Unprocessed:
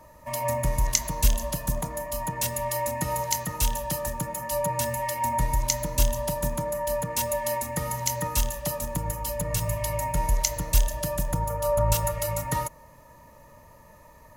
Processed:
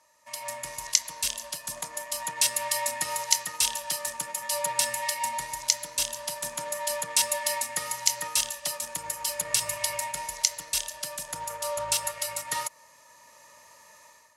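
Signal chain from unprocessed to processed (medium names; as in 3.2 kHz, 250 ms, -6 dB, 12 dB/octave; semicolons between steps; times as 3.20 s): dynamic bell 6.6 kHz, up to -7 dB, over -48 dBFS, Q 4.1; in parallel at -5.5 dB: crossover distortion -33.5 dBFS; on the sum: level rider; frequency weighting ITU-R 468; trim -12.5 dB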